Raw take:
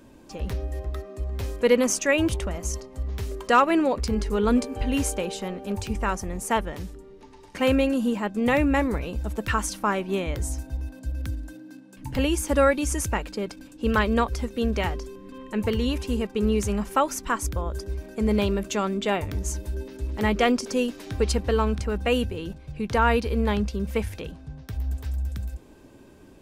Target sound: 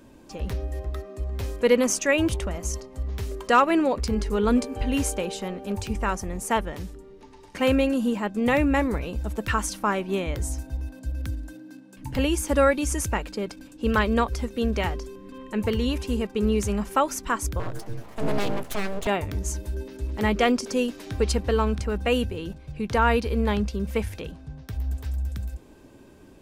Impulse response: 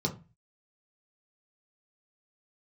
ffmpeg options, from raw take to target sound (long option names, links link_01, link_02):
-filter_complex "[0:a]asettb=1/sr,asplit=3[link_01][link_02][link_03];[link_01]atrim=end=17.594[link_04];[link_02]atrim=start=17.59:end=19.07,asetpts=PTS-STARTPTS,afade=type=in:duration=0.004:curve=qsin,afade=type=out:start_time=1.476:duration=0.004:curve=qsin,aeval=exprs='abs(val(0))':channel_layout=same[link_05];[link_03]atrim=start=19.066[link_06];[link_04][link_05]acrossfade=duration=0.004:curve1=hsin:curve2=qsin[link_07];[link_07][link_06]acrossfade=duration=0.004:curve1=qsin:curve2=hsin"